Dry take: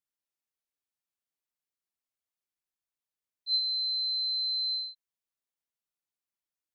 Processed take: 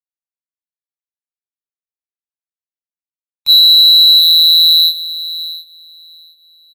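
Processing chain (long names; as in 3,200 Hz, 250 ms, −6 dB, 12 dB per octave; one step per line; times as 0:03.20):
high-frequency loss of the air 69 metres
bit-depth reduction 12 bits, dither none
linear-prediction vocoder at 8 kHz pitch kept
comb filter 0.8 ms, depth 35%
leveller curve on the samples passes 3
repeating echo 713 ms, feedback 31%, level −9 dB
upward compression, threshold −48 dBFS
power curve on the samples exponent 2
boost into a limiter +33.5 dB
level −1 dB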